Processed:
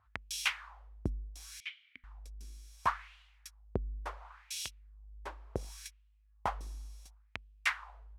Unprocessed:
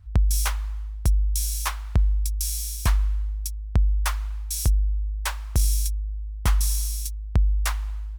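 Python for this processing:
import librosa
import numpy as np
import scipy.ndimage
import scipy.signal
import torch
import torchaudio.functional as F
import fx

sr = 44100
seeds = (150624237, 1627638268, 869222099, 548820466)

y = fx.wah_lfo(x, sr, hz=0.7, low_hz=300.0, high_hz=3000.0, q=2.8)
y = fx.vowel_filter(y, sr, vowel='i', at=(1.6, 2.04))
y = y * 10.0 ** (5.5 / 20.0)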